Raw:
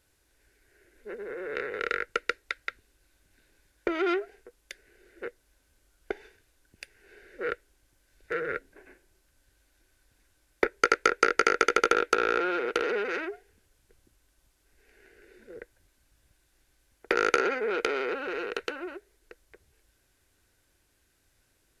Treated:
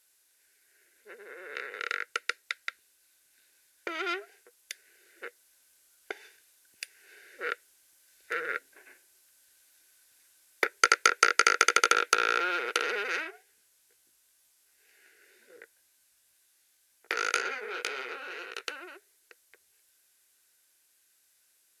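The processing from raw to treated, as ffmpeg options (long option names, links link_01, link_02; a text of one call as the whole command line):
ffmpeg -i in.wav -filter_complex "[0:a]asplit=3[link_01][link_02][link_03];[link_01]afade=type=out:start_time=13.22:duration=0.02[link_04];[link_02]flanger=delay=15.5:depth=6.5:speed=2,afade=type=in:start_time=13.22:duration=0.02,afade=type=out:start_time=18.66:duration=0.02[link_05];[link_03]afade=type=in:start_time=18.66:duration=0.02[link_06];[link_04][link_05][link_06]amix=inputs=3:normalize=0,highpass=frequency=1400:poles=1,aemphasis=mode=production:type=cd,dynaudnorm=framelen=340:gausssize=31:maxgain=11.5dB,volume=-1dB" out.wav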